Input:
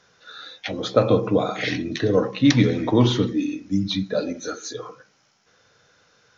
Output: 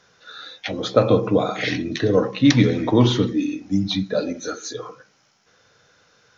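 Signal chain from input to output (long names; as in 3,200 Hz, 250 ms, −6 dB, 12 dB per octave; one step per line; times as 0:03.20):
0:03.61–0:04.01: parametric band 760 Hz +14 dB 0.32 octaves
level +1.5 dB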